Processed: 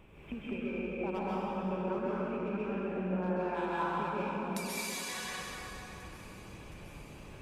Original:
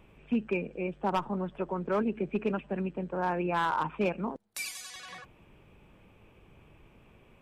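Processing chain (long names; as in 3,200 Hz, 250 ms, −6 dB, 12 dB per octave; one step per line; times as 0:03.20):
downward compressor 4 to 1, threshold −42 dBFS, peak gain reduction 15 dB
on a send: delay with a high-pass on its return 718 ms, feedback 76%, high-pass 1,700 Hz, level −18.5 dB
on the sum: dense smooth reverb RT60 3.4 s, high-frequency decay 0.75×, pre-delay 115 ms, DRR −8 dB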